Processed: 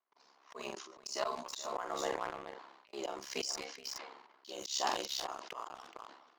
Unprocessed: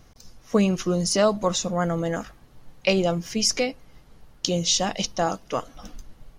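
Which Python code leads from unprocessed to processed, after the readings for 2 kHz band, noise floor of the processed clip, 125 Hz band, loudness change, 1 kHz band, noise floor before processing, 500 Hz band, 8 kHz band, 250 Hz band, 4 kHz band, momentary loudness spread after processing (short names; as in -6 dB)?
-12.5 dB, -68 dBFS, -34.0 dB, -15.5 dB, -9.5 dB, -53 dBFS, -17.0 dB, -15.0 dB, -25.0 dB, -13.0 dB, 16 LU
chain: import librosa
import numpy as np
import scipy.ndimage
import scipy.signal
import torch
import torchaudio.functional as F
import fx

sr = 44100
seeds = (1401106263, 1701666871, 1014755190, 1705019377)

p1 = fx.step_gate(x, sr, bpm=128, pattern='.xxxxx...xxx', floor_db=-24.0, edge_ms=4.5)
p2 = p1 * np.sin(2.0 * np.pi * 34.0 * np.arange(len(p1)) / sr)
p3 = fx.vibrato(p2, sr, rate_hz=13.0, depth_cents=11.0)
p4 = fx.high_shelf(p3, sr, hz=6400.0, db=-5.0)
p5 = p4 + fx.echo_single(p4, sr, ms=424, db=-13.5, dry=0)
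p6 = fx.env_lowpass(p5, sr, base_hz=2700.0, full_db=-23.0)
p7 = fx.level_steps(p6, sr, step_db=16)
p8 = p6 + (p7 * librosa.db_to_amplitude(0.5))
p9 = fx.cabinet(p8, sr, low_hz=390.0, low_slope=24, high_hz=9200.0, hz=(520.0, 1000.0, 4400.0, 7400.0), db=(-9, 9, 5, 5))
p10 = fx.doubler(p9, sr, ms=45.0, db=-8.5)
p11 = fx.leveller(p10, sr, passes=2)
p12 = fx.auto_swell(p11, sr, attack_ms=775.0)
p13 = fx.sustainer(p12, sr, db_per_s=56.0)
y = p13 * librosa.db_to_amplitude(-4.0)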